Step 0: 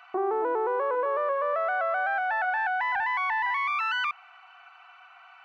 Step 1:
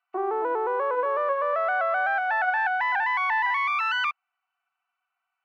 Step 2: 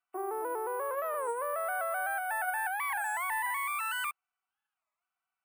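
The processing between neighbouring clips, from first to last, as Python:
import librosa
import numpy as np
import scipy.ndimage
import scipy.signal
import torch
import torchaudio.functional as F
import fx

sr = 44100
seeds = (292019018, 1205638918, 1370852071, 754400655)

y1 = fx.highpass(x, sr, hz=380.0, slope=6)
y1 = fx.upward_expand(y1, sr, threshold_db=-50.0, expansion=2.5)
y1 = F.gain(torch.from_numpy(y1), 5.0).numpy()
y2 = np.repeat(y1[::4], 4)[:len(y1)]
y2 = fx.record_warp(y2, sr, rpm=33.33, depth_cents=250.0)
y2 = F.gain(torch.from_numpy(y2), -8.5).numpy()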